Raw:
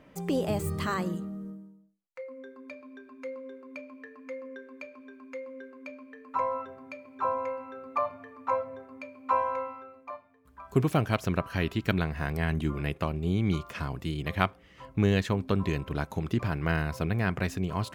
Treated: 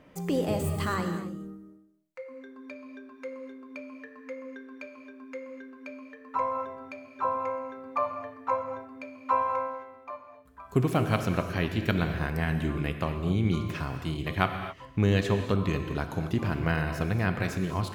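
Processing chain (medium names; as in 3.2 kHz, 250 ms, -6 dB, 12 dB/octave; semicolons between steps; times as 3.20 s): gated-style reverb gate 290 ms flat, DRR 6 dB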